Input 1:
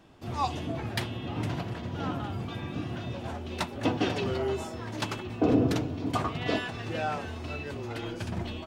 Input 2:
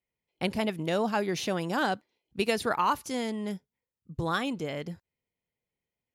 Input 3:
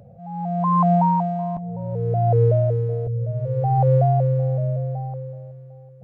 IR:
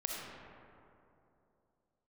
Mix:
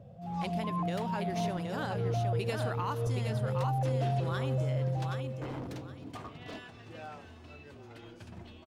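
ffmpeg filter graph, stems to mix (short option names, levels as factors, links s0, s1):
-filter_complex "[0:a]aeval=exprs='0.0841*(abs(mod(val(0)/0.0841+3,4)-2)-1)':c=same,volume=0.2,asplit=2[s0][s1];[s1]volume=0.112[s2];[1:a]volume=0.282,asplit=4[s3][s4][s5][s6];[s4]volume=0.15[s7];[s5]volume=0.668[s8];[2:a]lowpass=1000,alimiter=limit=0.112:level=0:latency=1,volume=0.562[s9];[s6]apad=whole_len=265929[s10];[s9][s10]sidechaincompress=threshold=0.00891:ratio=8:attack=16:release=160[s11];[3:a]atrim=start_sample=2205[s12];[s7][s12]afir=irnorm=-1:irlink=0[s13];[s2][s8]amix=inputs=2:normalize=0,aecho=0:1:770|1540|2310|3080:1|0.25|0.0625|0.0156[s14];[s0][s3][s11][s13][s14]amix=inputs=5:normalize=0"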